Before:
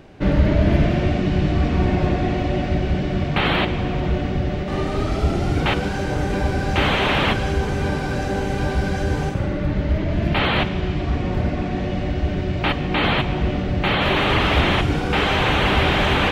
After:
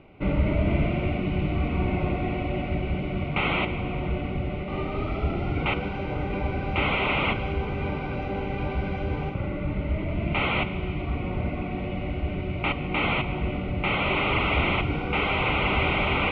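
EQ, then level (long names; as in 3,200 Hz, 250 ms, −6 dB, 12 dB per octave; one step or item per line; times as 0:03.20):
Butterworth band-reject 1,700 Hz, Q 3.1
transistor ladder low-pass 2,800 Hz, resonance 45%
+2.0 dB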